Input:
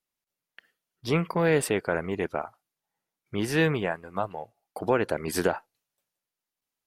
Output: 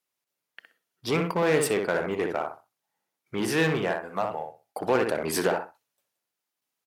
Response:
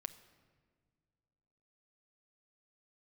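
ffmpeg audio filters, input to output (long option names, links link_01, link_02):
-filter_complex "[0:a]asplit=2[link_01][link_02];[link_02]adelay=63,lowpass=frequency=1900:poles=1,volume=-5dB,asplit=2[link_03][link_04];[link_04]adelay=63,lowpass=frequency=1900:poles=1,volume=0.24,asplit=2[link_05][link_06];[link_06]adelay=63,lowpass=frequency=1900:poles=1,volume=0.24[link_07];[link_01][link_03][link_05][link_07]amix=inputs=4:normalize=0,asplit=2[link_08][link_09];[link_09]aeval=exprs='0.0596*(abs(mod(val(0)/0.0596+3,4)-2)-1)':channel_layout=same,volume=-7dB[link_10];[link_08][link_10]amix=inputs=2:normalize=0,highpass=frequency=230:poles=1"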